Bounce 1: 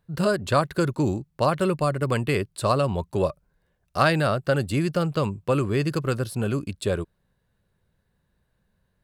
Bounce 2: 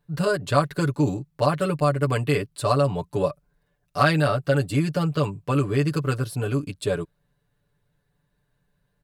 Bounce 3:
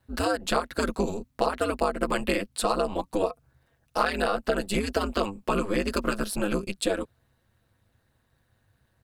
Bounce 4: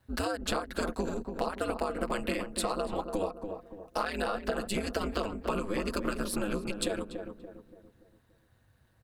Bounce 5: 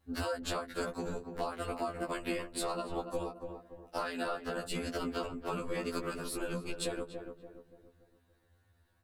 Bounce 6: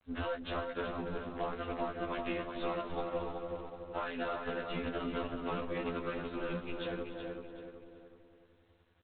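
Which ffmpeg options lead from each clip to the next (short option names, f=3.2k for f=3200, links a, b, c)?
-af "aecho=1:1:6.9:0.92,volume=-2.5dB"
-af "equalizer=f=170:t=o:w=1.3:g=-11.5,acompressor=threshold=-27dB:ratio=6,aeval=exprs='val(0)*sin(2*PI*100*n/s)':c=same,volume=8dB"
-filter_complex "[0:a]acompressor=threshold=-30dB:ratio=3,asplit=2[a][b];[b]adelay=287,lowpass=f=1.1k:p=1,volume=-6dB,asplit=2[c][d];[d]adelay=287,lowpass=f=1.1k:p=1,volume=0.45,asplit=2[e][f];[f]adelay=287,lowpass=f=1.1k:p=1,volume=0.45,asplit=2[g][h];[h]adelay=287,lowpass=f=1.1k:p=1,volume=0.45,asplit=2[i][j];[j]adelay=287,lowpass=f=1.1k:p=1,volume=0.45[k];[c][e][g][i][k]amix=inputs=5:normalize=0[l];[a][l]amix=inputs=2:normalize=0"
-af "afftfilt=real='re*2*eq(mod(b,4),0)':imag='im*2*eq(mod(b,4),0)':win_size=2048:overlap=0.75,volume=-1.5dB"
-filter_complex "[0:a]aeval=exprs='if(lt(val(0),0),0.708*val(0),val(0))':c=same,asplit=2[a][b];[b]adelay=376,lowpass=f=2.5k:p=1,volume=-5dB,asplit=2[c][d];[d]adelay=376,lowpass=f=2.5k:p=1,volume=0.43,asplit=2[e][f];[f]adelay=376,lowpass=f=2.5k:p=1,volume=0.43,asplit=2[g][h];[h]adelay=376,lowpass=f=2.5k:p=1,volume=0.43,asplit=2[i][j];[j]adelay=376,lowpass=f=2.5k:p=1,volume=0.43[k];[c][e][g][i][k]amix=inputs=5:normalize=0[l];[a][l]amix=inputs=2:normalize=0" -ar 8000 -c:a adpcm_g726 -b:a 24k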